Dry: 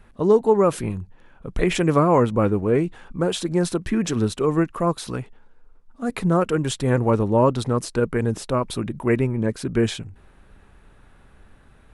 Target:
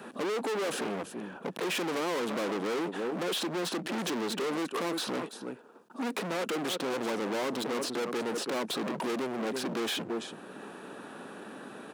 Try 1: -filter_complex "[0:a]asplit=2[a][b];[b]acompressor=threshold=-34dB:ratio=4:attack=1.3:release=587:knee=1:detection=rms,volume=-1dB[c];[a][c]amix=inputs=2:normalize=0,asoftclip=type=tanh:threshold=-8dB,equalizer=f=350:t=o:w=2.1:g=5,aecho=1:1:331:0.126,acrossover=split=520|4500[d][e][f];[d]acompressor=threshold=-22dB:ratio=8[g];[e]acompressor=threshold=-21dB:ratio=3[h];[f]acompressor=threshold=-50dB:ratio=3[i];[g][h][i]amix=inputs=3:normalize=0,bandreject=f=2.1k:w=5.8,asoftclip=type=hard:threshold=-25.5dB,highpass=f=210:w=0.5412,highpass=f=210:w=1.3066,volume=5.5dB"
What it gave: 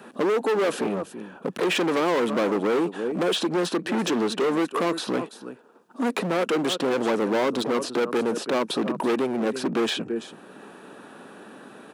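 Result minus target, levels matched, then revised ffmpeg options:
hard clip: distortion -4 dB
-filter_complex "[0:a]asplit=2[a][b];[b]acompressor=threshold=-34dB:ratio=4:attack=1.3:release=587:knee=1:detection=rms,volume=-1dB[c];[a][c]amix=inputs=2:normalize=0,asoftclip=type=tanh:threshold=-8dB,equalizer=f=350:t=o:w=2.1:g=5,aecho=1:1:331:0.126,acrossover=split=520|4500[d][e][f];[d]acompressor=threshold=-22dB:ratio=8[g];[e]acompressor=threshold=-21dB:ratio=3[h];[f]acompressor=threshold=-50dB:ratio=3[i];[g][h][i]amix=inputs=3:normalize=0,bandreject=f=2.1k:w=5.8,asoftclip=type=hard:threshold=-35.5dB,highpass=f=210:w=0.5412,highpass=f=210:w=1.3066,volume=5.5dB"

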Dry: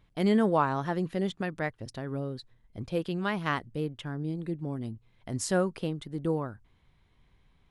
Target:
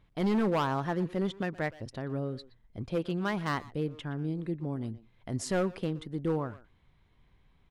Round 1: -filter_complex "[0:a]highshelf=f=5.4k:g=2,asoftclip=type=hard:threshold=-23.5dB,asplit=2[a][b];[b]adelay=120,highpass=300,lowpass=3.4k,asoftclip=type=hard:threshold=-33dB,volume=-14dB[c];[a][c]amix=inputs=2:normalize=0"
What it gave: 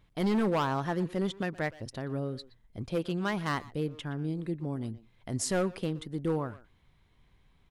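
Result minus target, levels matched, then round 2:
8000 Hz band +6.0 dB
-filter_complex "[0:a]highshelf=f=5.4k:g=-7.5,asoftclip=type=hard:threshold=-23.5dB,asplit=2[a][b];[b]adelay=120,highpass=300,lowpass=3.4k,asoftclip=type=hard:threshold=-33dB,volume=-14dB[c];[a][c]amix=inputs=2:normalize=0"

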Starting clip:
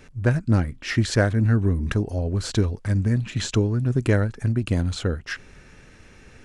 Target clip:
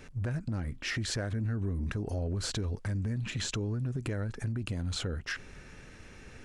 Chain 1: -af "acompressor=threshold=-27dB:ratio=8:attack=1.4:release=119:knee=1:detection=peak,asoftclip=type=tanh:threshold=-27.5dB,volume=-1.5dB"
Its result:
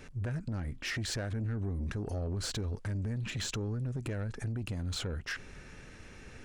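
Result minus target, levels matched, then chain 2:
soft clip: distortion +19 dB
-af "acompressor=threshold=-27dB:ratio=8:attack=1.4:release=119:knee=1:detection=peak,asoftclip=type=tanh:threshold=-16dB,volume=-1.5dB"

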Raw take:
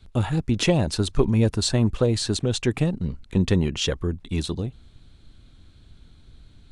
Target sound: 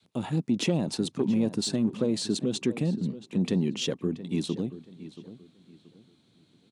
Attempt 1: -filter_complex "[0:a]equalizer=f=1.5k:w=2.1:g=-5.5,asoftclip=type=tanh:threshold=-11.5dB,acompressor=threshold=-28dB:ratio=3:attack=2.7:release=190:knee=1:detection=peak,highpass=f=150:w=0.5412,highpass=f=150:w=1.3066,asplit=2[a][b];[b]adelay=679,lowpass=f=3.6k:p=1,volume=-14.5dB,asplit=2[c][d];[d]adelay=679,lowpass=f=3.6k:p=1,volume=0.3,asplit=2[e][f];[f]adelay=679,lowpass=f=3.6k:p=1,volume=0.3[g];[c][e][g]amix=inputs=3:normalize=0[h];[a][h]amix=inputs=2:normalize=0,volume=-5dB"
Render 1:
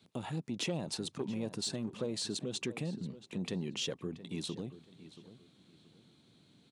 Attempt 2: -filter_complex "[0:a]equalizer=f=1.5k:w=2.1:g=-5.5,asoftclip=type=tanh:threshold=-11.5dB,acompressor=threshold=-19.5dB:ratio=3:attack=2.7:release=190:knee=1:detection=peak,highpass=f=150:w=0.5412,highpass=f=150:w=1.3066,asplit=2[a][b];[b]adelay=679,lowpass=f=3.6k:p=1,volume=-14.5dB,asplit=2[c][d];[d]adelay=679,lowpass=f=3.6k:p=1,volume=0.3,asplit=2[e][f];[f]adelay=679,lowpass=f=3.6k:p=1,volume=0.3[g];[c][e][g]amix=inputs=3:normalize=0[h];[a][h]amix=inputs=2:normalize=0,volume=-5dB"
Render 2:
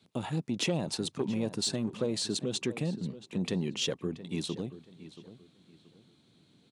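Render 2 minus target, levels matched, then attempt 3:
250 Hz band -2.5 dB
-filter_complex "[0:a]equalizer=f=1.5k:w=2.1:g=-5.5,asoftclip=type=tanh:threshold=-11.5dB,acompressor=threshold=-19.5dB:ratio=3:attack=2.7:release=190:knee=1:detection=peak,highpass=f=150:w=0.5412,highpass=f=150:w=1.3066,adynamicequalizer=threshold=0.00891:dfrequency=240:dqfactor=0.96:tfrequency=240:tqfactor=0.96:attack=5:release=100:ratio=0.438:range=4:mode=boostabove:tftype=bell,asplit=2[a][b];[b]adelay=679,lowpass=f=3.6k:p=1,volume=-14.5dB,asplit=2[c][d];[d]adelay=679,lowpass=f=3.6k:p=1,volume=0.3,asplit=2[e][f];[f]adelay=679,lowpass=f=3.6k:p=1,volume=0.3[g];[c][e][g]amix=inputs=3:normalize=0[h];[a][h]amix=inputs=2:normalize=0,volume=-5dB"

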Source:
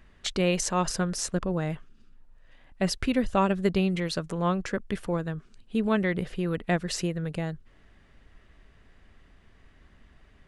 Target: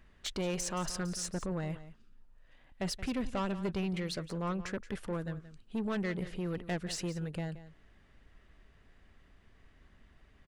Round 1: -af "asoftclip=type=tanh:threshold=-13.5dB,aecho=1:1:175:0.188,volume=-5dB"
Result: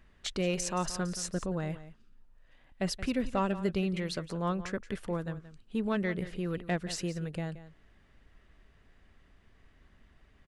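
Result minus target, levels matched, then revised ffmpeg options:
soft clip: distortion -12 dB
-af "asoftclip=type=tanh:threshold=-24dB,aecho=1:1:175:0.188,volume=-5dB"

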